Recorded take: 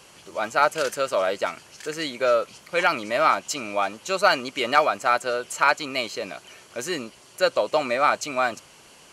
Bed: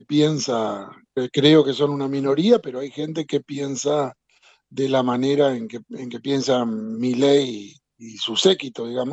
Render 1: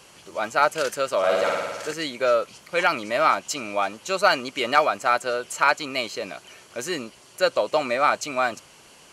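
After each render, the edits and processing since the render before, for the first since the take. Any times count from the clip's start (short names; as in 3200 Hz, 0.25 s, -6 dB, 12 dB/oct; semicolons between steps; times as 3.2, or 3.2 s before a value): 1.18–1.93 flutter echo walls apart 9.5 m, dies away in 1.4 s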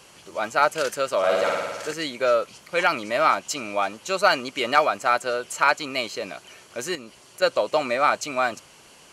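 6.95–7.42 compressor 3:1, threshold -37 dBFS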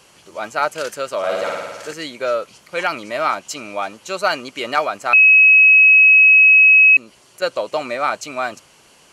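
5.13–6.97 bleep 2560 Hz -6 dBFS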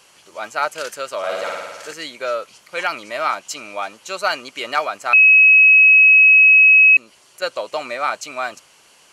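low shelf 440 Hz -9.5 dB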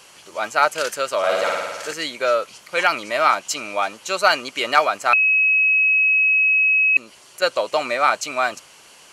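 negative-ratio compressor -13 dBFS, ratio -0.5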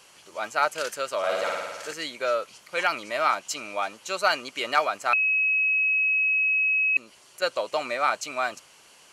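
gain -6.5 dB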